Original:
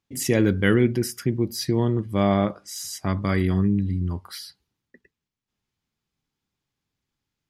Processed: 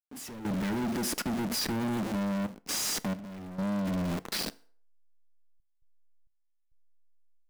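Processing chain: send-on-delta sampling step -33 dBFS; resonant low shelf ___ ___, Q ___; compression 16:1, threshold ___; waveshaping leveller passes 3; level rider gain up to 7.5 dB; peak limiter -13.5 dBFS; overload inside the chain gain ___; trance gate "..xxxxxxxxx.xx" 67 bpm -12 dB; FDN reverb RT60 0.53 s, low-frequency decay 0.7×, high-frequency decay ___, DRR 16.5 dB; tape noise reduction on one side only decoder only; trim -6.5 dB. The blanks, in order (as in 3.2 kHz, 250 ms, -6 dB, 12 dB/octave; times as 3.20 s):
140 Hz, -12.5 dB, 3, -21 dBFS, 22.5 dB, 0.8×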